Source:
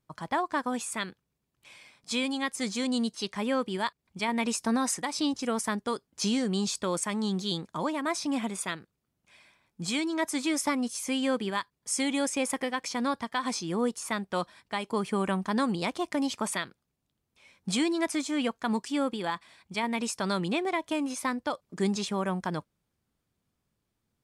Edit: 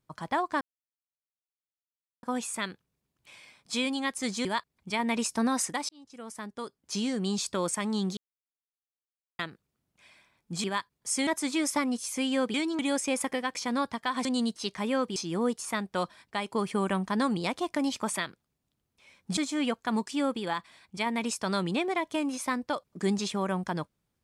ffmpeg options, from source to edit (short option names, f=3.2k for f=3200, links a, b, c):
-filter_complex "[0:a]asplit=13[a][b][c][d][e][f][g][h][i][j][k][l][m];[a]atrim=end=0.61,asetpts=PTS-STARTPTS,afade=t=out:st=0.606:d=0.004:c=hsin,apad=pad_dur=1.62[n];[b]atrim=start=0.61:end=2.832,asetpts=PTS-STARTPTS,afade=t=in:d=0.004:c=hsin[o];[c]atrim=start=3.738:end=5.18,asetpts=PTS-STARTPTS,afade=t=out:st=1.438:d=0.004:c=hsin[p];[d]atrim=start=5.18:end=7.46,asetpts=PTS-STARTPTS,afade=t=in:d=1.61,afade=t=out:st=2.276:d=0.004:c=hsin[q];[e]atrim=start=7.46:end=8.68,asetpts=PTS-STARTPTS,volume=0[r];[f]atrim=start=8.68:end=9.932,asetpts=PTS-STARTPTS,afade=t=in:d=0.004:c=hsin[s];[g]atrim=start=11.448:end=12.082[t];[h]atrim=start=10.178:end=11.452[u];[i]atrim=start=9.928:end=10.182[v];[j]atrim=start=12.078:end=13.542[w];[k]atrim=start=2.828:end=3.742[x];[l]atrim=start=13.538:end=17.752[y];[m]atrim=start=18.138[z];[n][o]concat=n=2:v=0:a=1[aa];[p][q][r][s]concat=n=4:v=0:a=1[ab];[aa][ab]acrossfade=d=0.004:c1=hsin:c2=hsin[ac];[ac][t]acrossfade=d=0.004:c1=hsin:c2=hsin[ad];[ad][u]acrossfade=d=0.004:c1=hsin:c2=hsin[ae];[ae][v]acrossfade=d=0.004:c1=hsin:c2=hsin[af];[af][w]acrossfade=d=0.004:c1=hsin:c2=hsin[ag];[ag][x]acrossfade=d=0.004:c1=hsin:c2=hsin[ah];[ah][y]acrossfade=d=0.004:c1=hsin:c2=hsin[ai];[ai][z]acrossfade=d=0.004:c1=hsin:c2=hsin"